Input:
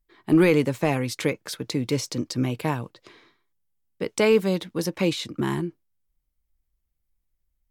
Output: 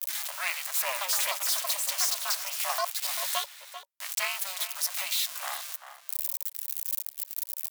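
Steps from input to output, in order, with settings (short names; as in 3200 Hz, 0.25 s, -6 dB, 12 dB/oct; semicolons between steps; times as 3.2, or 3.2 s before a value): switching spikes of -18 dBFS; 0.89–4.33 echoes that change speed 0.118 s, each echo +6 st, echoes 2; Chebyshev high-pass 750 Hz, order 8; outdoor echo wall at 67 m, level -10 dB; ring modulator 190 Hz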